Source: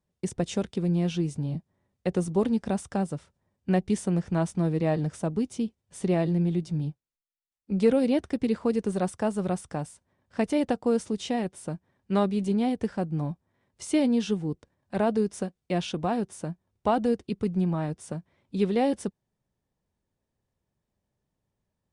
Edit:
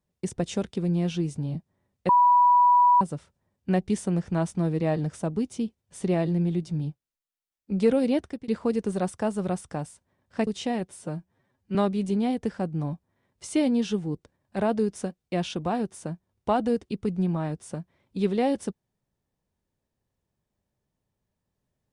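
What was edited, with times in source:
2.09–3.01 bleep 979 Hz -14.5 dBFS
8.17–8.48 fade out linear, to -21.5 dB
10.47–11.11 cut
11.61–12.13 stretch 1.5×

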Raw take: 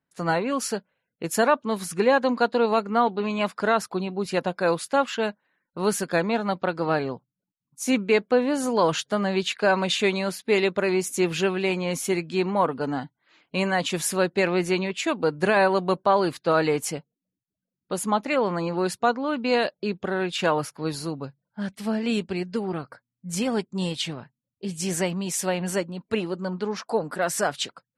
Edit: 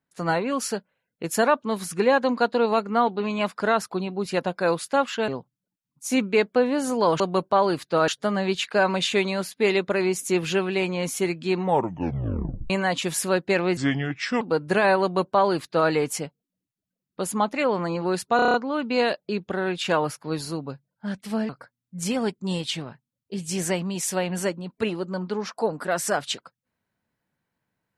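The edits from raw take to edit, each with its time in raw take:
5.28–7.04 cut
12.45 tape stop 1.13 s
14.65–15.13 speed 75%
15.74–16.62 copy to 8.96
19.08 stutter 0.03 s, 7 plays
22.03–22.8 cut

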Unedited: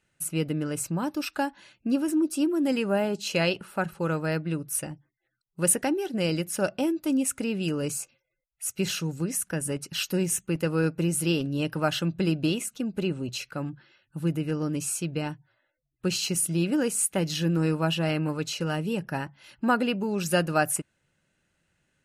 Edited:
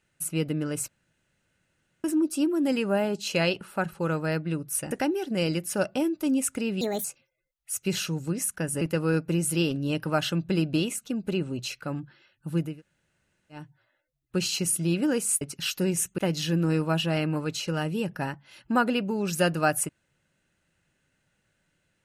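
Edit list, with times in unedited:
0.88–2.04 room tone
4.91–5.74 cut
7.64–7.97 speed 142%
9.74–10.51 move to 17.11
14.4–15.31 room tone, crossfade 0.24 s

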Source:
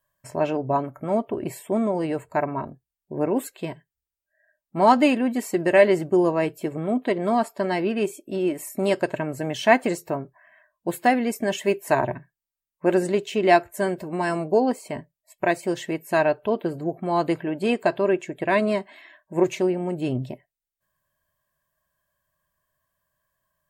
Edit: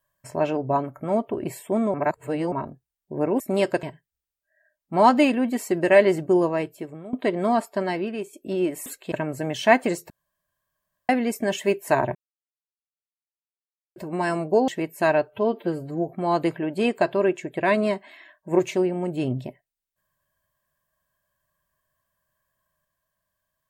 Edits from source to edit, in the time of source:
1.94–2.52 reverse
3.4–3.66 swap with 8.69–9.12
6.19–6.96 fade out linear, to -17.5 dB
7.58–8.16 fade out linear, to -11 dB
10.1–11.09 room tone
12.15–13.96 mute
14.68–15.79 cut
16.4–16.93 stretch 1.5×

